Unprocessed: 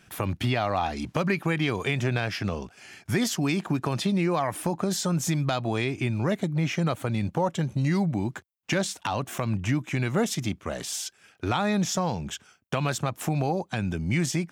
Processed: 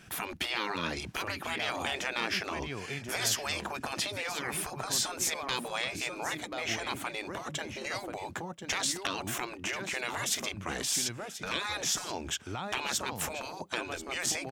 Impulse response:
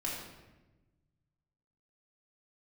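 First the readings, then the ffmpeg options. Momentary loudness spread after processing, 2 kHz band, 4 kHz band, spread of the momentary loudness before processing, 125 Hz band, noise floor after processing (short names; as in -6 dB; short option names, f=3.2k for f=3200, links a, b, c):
7 LU, -1.0 dB, +2.0 dB, 7 LU, -18.5 dB, -45 dBFS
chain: -af "aecho=1:1:1035:0.2,afftfilt=real='re*lt(hypot(re,im),0.1)':imag='im*lt(hypot(re,im),0.1)':win_size=1024:overlap=0.75,volume=2.5dB"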